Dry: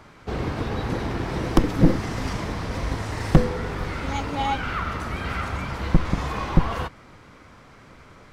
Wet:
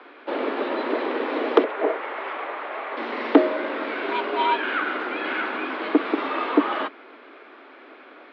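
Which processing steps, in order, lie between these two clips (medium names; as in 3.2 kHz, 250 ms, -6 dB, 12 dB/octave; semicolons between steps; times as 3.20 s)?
1.64–2.97 s: three-band isolator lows -19 dB, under 360 Hz, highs -19 dB, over 2.8 kHz; mistuned SSB +130 Hz 150–3600 Hz; trim +3.5 dB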